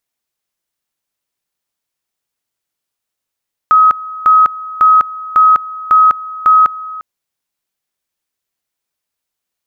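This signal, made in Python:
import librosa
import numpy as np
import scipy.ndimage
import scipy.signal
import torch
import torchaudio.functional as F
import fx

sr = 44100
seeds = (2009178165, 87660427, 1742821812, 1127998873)

y = fx.two_level_tone(sr, hz=1270.0, level_db=-4.0, drop_db=18.5, high_s=0.2, low_s=0.35, rounds=6)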